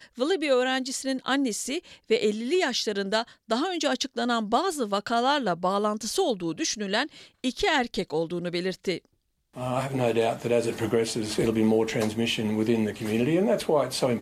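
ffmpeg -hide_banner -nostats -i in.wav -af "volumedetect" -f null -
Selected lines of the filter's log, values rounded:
mean_volume: -26.3 dB
max_volume: -11.0 dB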